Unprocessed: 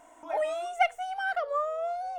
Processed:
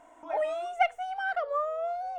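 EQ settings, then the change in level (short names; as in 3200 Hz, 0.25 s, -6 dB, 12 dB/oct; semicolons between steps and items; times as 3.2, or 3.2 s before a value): high shelf 5100 Hz -10.5 dB; 0.0 dB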